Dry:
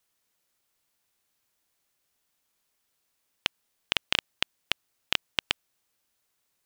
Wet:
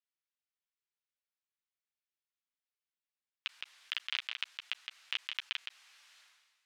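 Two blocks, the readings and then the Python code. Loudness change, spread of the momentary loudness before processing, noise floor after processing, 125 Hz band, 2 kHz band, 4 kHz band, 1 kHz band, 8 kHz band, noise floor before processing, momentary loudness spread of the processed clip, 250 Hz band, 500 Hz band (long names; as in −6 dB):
−8.5 dB, 7 LU, below −85 dBFS, below −40 dB, −8.0 dB, −8.5 dB, −13.0 dB, −15.0 dB, −77 dBFS, 8 LU, below −35 dB, below −25 dB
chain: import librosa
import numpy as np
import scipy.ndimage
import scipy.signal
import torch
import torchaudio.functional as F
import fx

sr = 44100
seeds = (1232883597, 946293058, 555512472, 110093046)

y = fx.chorus_voices(x, sr, voices=4, hz=1.0, base_ms=11, depth_ms=4.1, mix_pct=35)
y = y + 10.0 ** (-13.0 / 20.0) * np.pad(y, (int(164 * sr / 1000.0), 0))[:len(y)]
y = fx.level_steps(y, sr, step_db=15)
y = scipy.signal.sosfilt(scipy.signal.butter(2, 1200.0, 'highpass', fs=sr, output='sos'), y)
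y = fx.vibrato(y, sr, rate_hz=2.7, depth_cents=26.0)
y = scipy.signal.sosfilt(scipy.signal.butter(2, 3000.0, 'lowpass', fs=sr, output='sos'), y)
y = fx.tilt_eq(y, sr, slope=3.0)
y = fx.buffer_glitch(y, sr, at_s=(5.59,), block=1024, repeats=2)
y = fx.sustainer(y, sr, db_per_s=40.0)
y = y * librosa.db_to_amplitude(-6.5)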